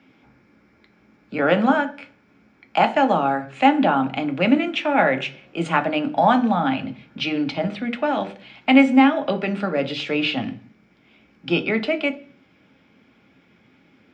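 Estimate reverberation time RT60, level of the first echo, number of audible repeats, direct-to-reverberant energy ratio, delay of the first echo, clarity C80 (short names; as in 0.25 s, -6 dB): 0.40 s, none, none, 7.0 dB, none, 21.5 dB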